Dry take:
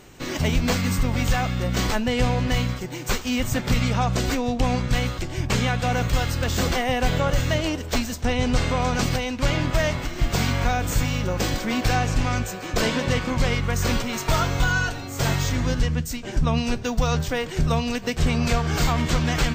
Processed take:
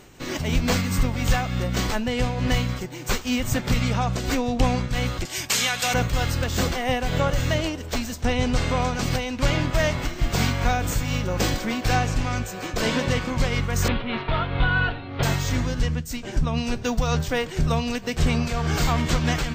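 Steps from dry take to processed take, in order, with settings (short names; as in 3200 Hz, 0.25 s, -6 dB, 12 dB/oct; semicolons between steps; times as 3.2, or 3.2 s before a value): 5.25–5.94 tilt +4.5 dB/oct; 13.88–15.23 steep low-pass 3800 Hz 48 dB/oct; noise-modulated level, depth 65%; gain +2.5 dB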